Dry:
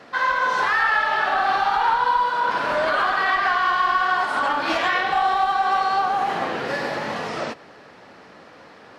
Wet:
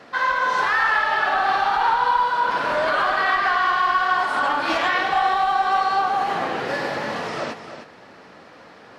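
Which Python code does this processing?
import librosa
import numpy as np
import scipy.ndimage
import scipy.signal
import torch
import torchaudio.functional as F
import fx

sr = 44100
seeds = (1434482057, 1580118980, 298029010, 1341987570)

y = x + 10.0 ** (-10.5 / 20.0) * np.pad(x, (int(307 * sr / 1000.0), 0))[:len(x)]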